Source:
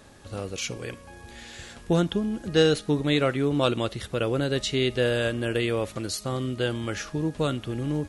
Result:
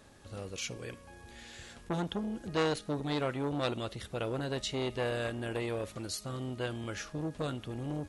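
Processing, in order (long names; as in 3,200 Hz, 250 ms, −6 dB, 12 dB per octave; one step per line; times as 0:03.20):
saturating transformer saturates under 1,400 Hz
level −6.5 dB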